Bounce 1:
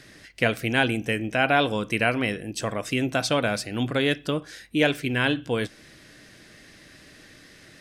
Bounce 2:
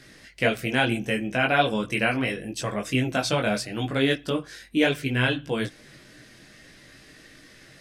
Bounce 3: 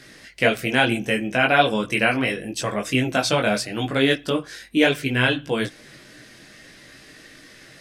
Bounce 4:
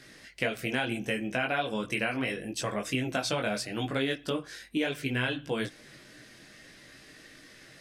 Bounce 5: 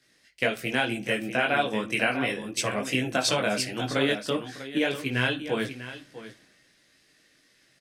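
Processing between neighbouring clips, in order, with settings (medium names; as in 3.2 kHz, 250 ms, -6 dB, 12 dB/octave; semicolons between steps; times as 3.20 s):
chorus voices 6, 0.7 Hz, delay 19 ms, depth 4.7 ms; trim +2.5 dB
bass shelf 150 Hz -6 dB; trim +4.5 dB
compression 5:1, threshold -20 dBFS, peak gain reduction 9 dB; trim -6 dB
bass shelf 100 Hz -7.5 dB; on a send: multi-tap echo 58/647 ms -20/-8.5 dB; on the sum: three bands expanded up and down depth 70%; trim +4 dB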